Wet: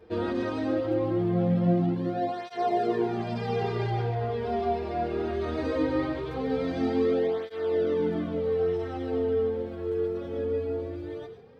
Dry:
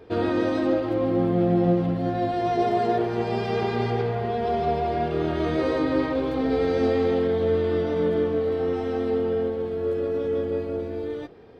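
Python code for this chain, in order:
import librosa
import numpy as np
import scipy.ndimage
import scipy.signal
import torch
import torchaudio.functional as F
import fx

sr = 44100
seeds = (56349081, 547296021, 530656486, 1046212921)

y = fx.notch(x, sr, hz=3200.0, q=11.0, at=(4.66, 5.66))
y = y + 10.0 ** (-8.0 / 20.0) * np.pad(y, (int(137 * sr / 1000.0), 0))[:len(y)]
y = fx.flanger_cancel(y, sr, hz=0.2, depth_ms=7.5)
y = F.gain(torch.from_numpy(y), -2.5).numpy()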